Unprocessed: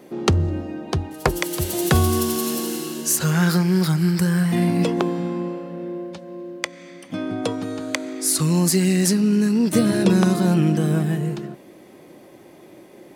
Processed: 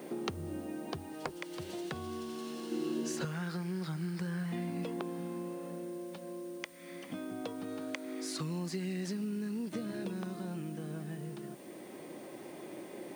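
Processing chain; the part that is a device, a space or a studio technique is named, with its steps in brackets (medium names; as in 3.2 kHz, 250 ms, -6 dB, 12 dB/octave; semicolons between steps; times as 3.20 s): medium wave at night (band-pass 150–4300 Hz; compression 4:1, threshold -38 dBFS, peak gain reduction 20.5 dB; tremolo 0.23 Hz, depth 33%; whistle 9 kHz -64 dBFS; white noise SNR 23 dB); 2.71–3.25 s: peaking EQ 300 Hz +8.5 dB 1.8 oct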